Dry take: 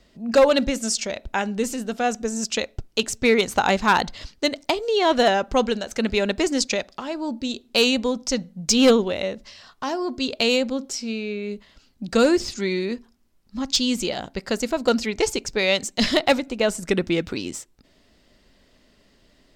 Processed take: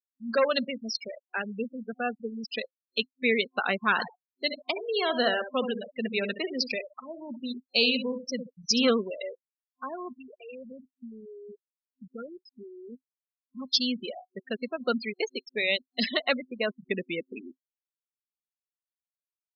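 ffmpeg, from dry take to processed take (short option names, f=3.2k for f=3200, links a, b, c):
-filter_complex "[0:a]asettb=1/sr,asplit=3[a][b][c];[a]atrim=end=3.914[d];[b]atrim=start=3.91:end=8.87,asetpts=PTS-STARTPTS,afade=t=in:d=0.004:c=qsin,afade=t=out:st=4.956:d=0.004:c=qsin,aecho=1:1:69|138|207|276:0.398|0.123|0.0383|0.0119,atrim=end_sample=218736[e];[c]atrim=start=8.866[f];[d][e]acrossfade=d=0.004:c1=hsin:c2=qsin[g];[g][f]acrossfade=d=0.004:c1=qsin:c2=hsin,asettb=1/sr,asplit=3[h][i][j];[h]atrim=end=10.084[k];[i]atrim=start=10.08:end=13.59,asetpts=PTS-STARTPTS,afade=t=in:d=0.004:c=qsin,afade=t=out:st=3.506:d=0.004:c=qsin,acompressor=threshold=-30dB:ratio=4:attack=3.2:release=140:knee=1:detection=peak[l];[j]atrim=start=13.586[m];[k][l]acrossfade=d=0.004:c1=hsin:c2=qsin[n];[n][m]acrossfade=d=0.004:c1=qsin:c2=hsin,acrossover=split=220 5600:gain=0.0891 1 0.112[o][p][q];[o][p][q]amix=inputs=3:normalize=0,afftfilt=real='re*gte(hypot(re,im),0.1)':imag='im*gte(hypot(re,im),0.1)':win_size=1024:overlap=0.75,superequalizer=6b=0.355:7b=0.562:8b=0.501:9b=0.282:14b=1.78,volume=-3dB"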